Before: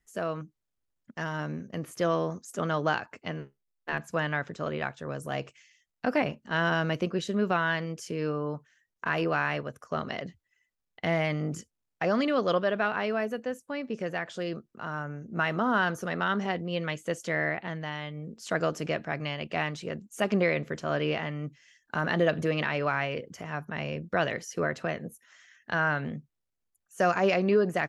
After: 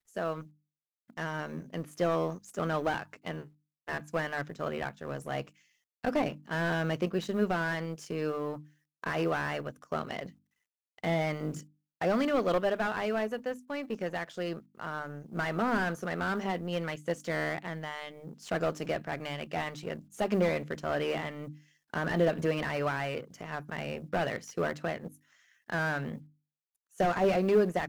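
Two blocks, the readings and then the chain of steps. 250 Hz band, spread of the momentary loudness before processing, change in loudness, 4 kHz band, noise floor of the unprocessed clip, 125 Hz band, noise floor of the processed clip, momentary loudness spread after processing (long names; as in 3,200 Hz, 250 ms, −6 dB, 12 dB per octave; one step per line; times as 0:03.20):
−2.0 dB, 12 LU, −2.5 dB, −4.0 dB, −83 dBFS, −3.0 dB, below −85 dBFS, 12 LU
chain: mu-law and A-law mismatch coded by A
mains-hum notches 50/100/150/200/250/300 Hz
slew-rate limiting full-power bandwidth 50 Hz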